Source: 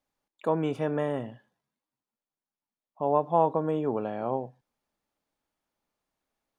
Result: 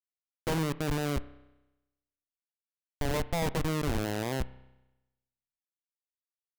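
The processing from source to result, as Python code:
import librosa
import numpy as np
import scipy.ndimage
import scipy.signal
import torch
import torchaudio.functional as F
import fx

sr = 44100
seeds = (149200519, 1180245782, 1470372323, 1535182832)

y = fx.schmitt(x, sr, flips_db=-25.5)
y = fx.rev_spring(y, sr, rt60_s=1.0, pass_ms=(31,), chirp_ms=65, drr_db=16.5)
y = y * 10.0 ** (4.0 / 20.0)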